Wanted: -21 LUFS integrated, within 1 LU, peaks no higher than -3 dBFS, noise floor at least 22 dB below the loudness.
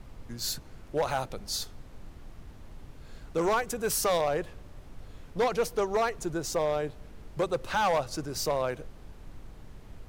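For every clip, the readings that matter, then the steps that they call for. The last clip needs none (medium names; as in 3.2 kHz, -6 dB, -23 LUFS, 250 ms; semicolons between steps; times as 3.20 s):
clipped samples 1.2%; clipping level -21.0 dBFS; noise floor -49 dBFS; noise floor target -52 dBFS; loudness -30.0 LUFS; peak level -21.0 dBFS; loudness target -21.0 LUFS
-> clip repair -21 dBFS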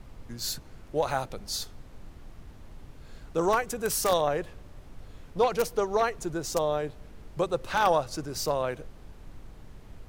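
clipped samples 0.0%; noise floor -49 dBFS; noise floor target -51 dBFS
-> noise print and reduce 6 dB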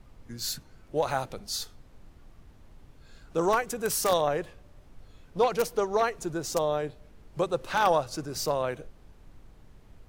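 noise floor -55 dBFS; loudness -29.0 LUFS; peak level -12.0 dBFS; loudness target -21.0 LUFS
-> trim +8 dB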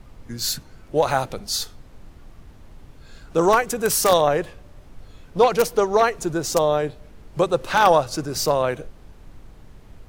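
loudness -21.0 LUFS; peak level -4.0 dBFS; noise floor -47 dBFS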